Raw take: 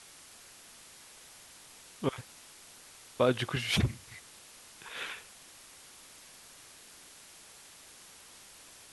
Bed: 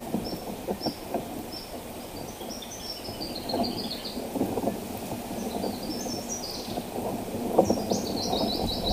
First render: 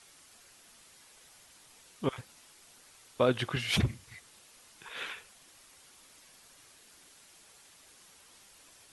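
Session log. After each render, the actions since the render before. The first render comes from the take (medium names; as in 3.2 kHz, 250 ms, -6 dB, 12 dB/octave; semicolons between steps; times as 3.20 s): noise reduction 6 dB, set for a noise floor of -54 dBFS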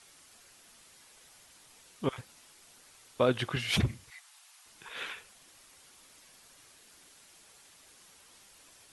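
4.10–4.66 s: steep high-pass 700 Hz 48 dB/octave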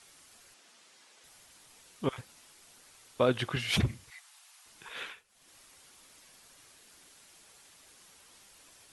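0.54–1.24 s: band-pass 230–7500 Hz; 4.97–5.54 s: dip -15 dB, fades 0.26 s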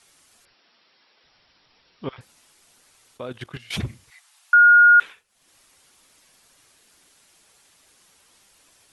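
0.45–2.21 s: brick-wall FIR low-pass 5.7 kHz; 3.17–3.73 s: level held to a coarse grid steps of 16 dB; 4.53–5.00 s: bleep 1.43 kHz -8.5 dBFS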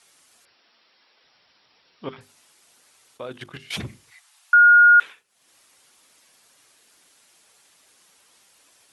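high-pass 180 Hz 6 dB/octave; hum notches 50/100/150/200/250/300/350/400 Hz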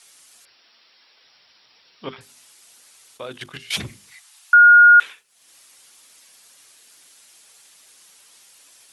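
treble shelf 2.1 kHz +8.5 dB; hum notches 50/100/150/200/250/300/350 Hz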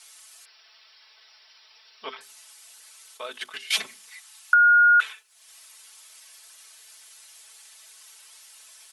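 high-pass 670 Hz 12 dB/octave; comb 4.6 ms, depth 59%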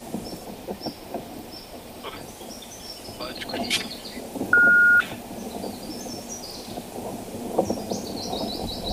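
add bed -2 dB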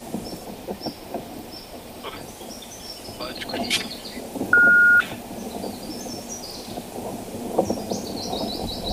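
trim +1.5 dB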